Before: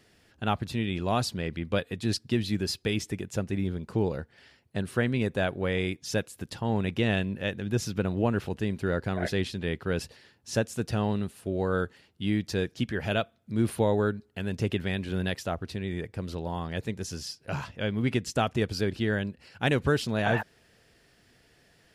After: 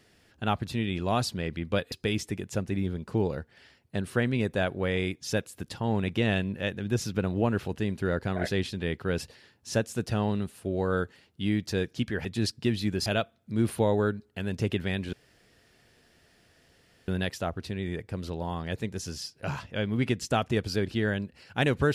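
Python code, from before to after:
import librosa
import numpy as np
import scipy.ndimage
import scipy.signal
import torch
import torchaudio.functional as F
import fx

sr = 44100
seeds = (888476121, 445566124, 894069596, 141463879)

y = fx.edit(x, sr, fx.move(start_s=1.92, length_s=0.81, to_s=13.06),
    fx.insert_room_tone(at_s=15.13, length_s=1.95), tone=tone)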